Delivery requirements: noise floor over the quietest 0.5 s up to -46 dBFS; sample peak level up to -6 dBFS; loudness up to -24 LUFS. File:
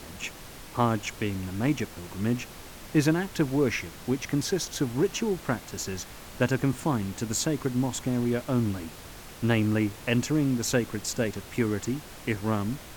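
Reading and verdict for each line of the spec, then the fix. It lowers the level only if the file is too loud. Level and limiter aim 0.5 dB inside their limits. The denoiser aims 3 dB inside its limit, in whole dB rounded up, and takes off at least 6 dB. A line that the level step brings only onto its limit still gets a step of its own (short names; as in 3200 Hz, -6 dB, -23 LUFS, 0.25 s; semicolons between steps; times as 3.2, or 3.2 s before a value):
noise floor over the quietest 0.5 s -44 dBFS: fail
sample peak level -10.0 dBFS: OK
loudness -28.5 LUFS: OK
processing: denoiser 6 dB, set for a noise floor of -44 dBFS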